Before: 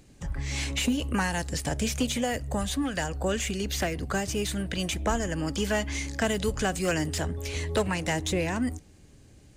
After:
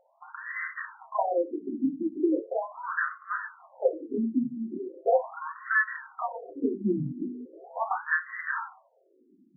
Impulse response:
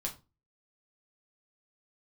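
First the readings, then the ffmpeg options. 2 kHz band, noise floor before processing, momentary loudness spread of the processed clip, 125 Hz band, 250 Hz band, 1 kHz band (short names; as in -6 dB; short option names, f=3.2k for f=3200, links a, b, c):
+2.5 dB, -54 dBFS, 11 LU, -12.5 dB, -1.5 dB, +1.5 dB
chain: -filter_complex "[0:a]asubboost=boost=2.5:cutoff=240,highpass=f=230:t=q:w=0.5412,highpass=f=230:t=q:w=1.307,lowpass=f=2.1k:t=q:w=0.5176,lowpass=f=2.1k:t=q:w=0.7071,lowpass=f=2.1k:t=q:w=1.932,afreqshift=-170[a];[1:a]atrim=start_sample=2205[b];[a][b]afir=irnorm=-1:irlink=0,afftfilt=real='re*between(b*sr/1024,240*pow(1500/240,0.5+0.5*sin(2*PI*0.39*pts/sr))/1.41,240*pow(1500/240,0.5+0.5*sin(2*PI*0.39*pts/sr))*1.41)':imag='im*between(b*sr/1024,240*pow(1500/240,0.5+0.5*sin(2*PI*0.39*pts/sr))/1.41,240*pow(1500/240,0.5+0.5*sin(2*PI*0.39*pts/sr))*1.41)':win_size=1024:overlap=0.75,volume=8dB"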